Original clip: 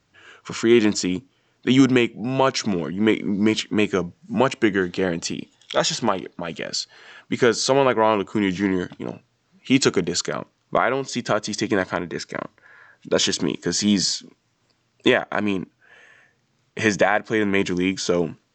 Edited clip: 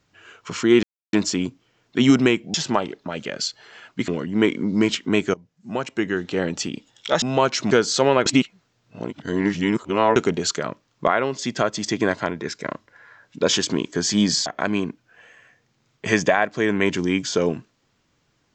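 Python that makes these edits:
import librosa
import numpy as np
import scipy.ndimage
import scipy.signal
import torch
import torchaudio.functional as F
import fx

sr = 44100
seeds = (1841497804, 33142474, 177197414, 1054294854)

y = fx.edit(x, sr, fx.insert_silence(at_s=0.83, length_s=0.3),
    fx.swap(start_s=2.24, length_s=0.49, other_s=5.87, other_length_s=1.54),
    fx.fade_in_from(start_s=3.99, length_s=1.19, floor_db=-21.0),
    fx.reverse_span(start_s=7.96, length_s=1.9),
    fx.cut(start_s=14.16, length_s=1.03), tone=tone)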